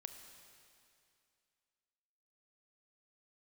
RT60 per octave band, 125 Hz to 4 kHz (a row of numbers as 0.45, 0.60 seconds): 2.5, 2.5, 2.5, 2.5, 2.5, 2.4 seconds